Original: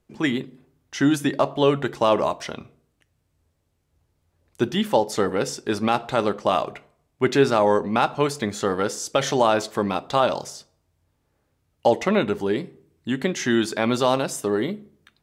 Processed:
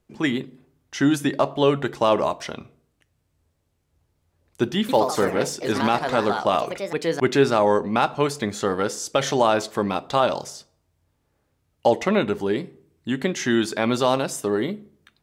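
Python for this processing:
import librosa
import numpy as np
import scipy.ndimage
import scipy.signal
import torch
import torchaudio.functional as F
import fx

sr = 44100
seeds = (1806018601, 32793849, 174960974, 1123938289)

y = fx.echo_pitch(x, sr, ms=98, semitones=3, count=3, db_per_echo=-6.0, at=(4.79, 7.54))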